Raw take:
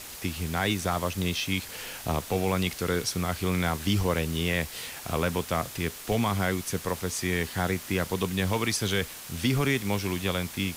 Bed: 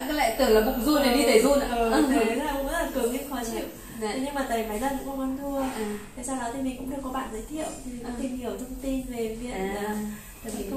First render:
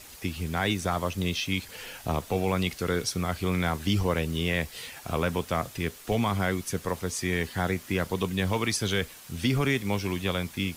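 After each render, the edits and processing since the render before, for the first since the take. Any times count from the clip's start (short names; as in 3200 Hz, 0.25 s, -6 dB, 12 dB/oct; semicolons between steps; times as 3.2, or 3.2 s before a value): denoiser 7 dB, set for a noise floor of -42 dBFS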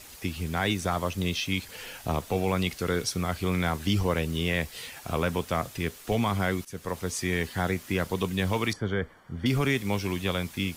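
6.65–7.14 fade in equal-power, from -16.5 dB; 8.73–9.46 polynomial smoothing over 41 samples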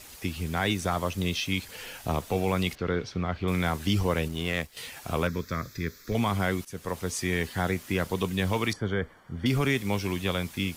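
2.75–3.48 air absorption 240 m; 4.28–4.77 power-law curve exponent 1.4; 5.27–6.15 fixed phaser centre 2900 Hz, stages 6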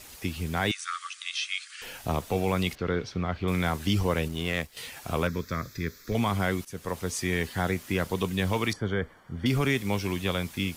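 0.71–1.82 brick-wall FIR band-pass 1100–10000 Hz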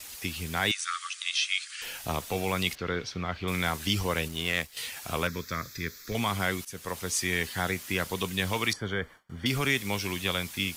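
gate with hold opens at -42 dBFS; tilt shelf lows -5 dB, about 1200 Hz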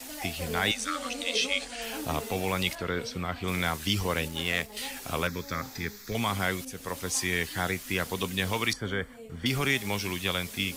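add bed -16.5 dB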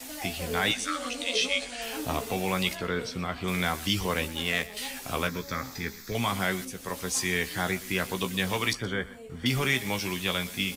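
doubler 16 ms -8 dB; echo 0.122 s -18.5 dB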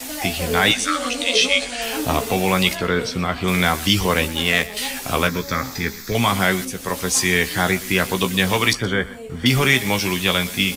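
gain +10 dB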